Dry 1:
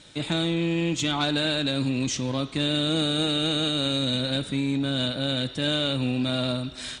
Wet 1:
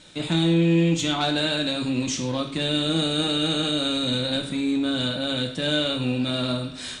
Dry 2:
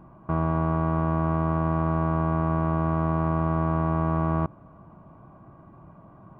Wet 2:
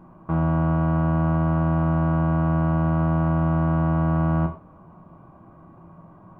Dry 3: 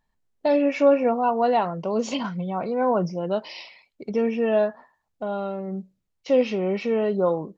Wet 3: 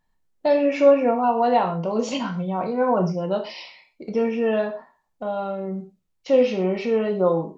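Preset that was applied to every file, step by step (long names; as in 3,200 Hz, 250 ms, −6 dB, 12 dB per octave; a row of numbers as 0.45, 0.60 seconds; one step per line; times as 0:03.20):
reverb whose tail is shaped and stops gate 150 ms falling, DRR 3.5 dB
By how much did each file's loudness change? +2.0, +3.5, +1.5 LU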